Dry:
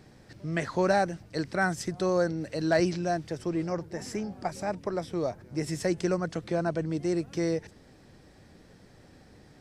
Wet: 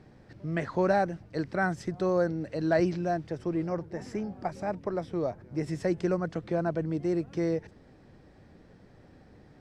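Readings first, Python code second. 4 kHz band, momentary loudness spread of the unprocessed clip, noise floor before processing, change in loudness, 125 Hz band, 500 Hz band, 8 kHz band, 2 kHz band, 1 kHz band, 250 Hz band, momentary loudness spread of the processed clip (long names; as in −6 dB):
−8.0 dB, 9 LU, −56 dBFS, −0.5 dB, 0.0 dB, −0.5 dB, below −10 dB, −2.5 dB, −1.0 dB, 0.0 dB, 9 LU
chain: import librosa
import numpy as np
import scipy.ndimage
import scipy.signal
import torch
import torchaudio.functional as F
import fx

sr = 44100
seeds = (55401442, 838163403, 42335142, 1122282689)

y = fx.lowpass(x, sr, hz=1800.0, slope=6)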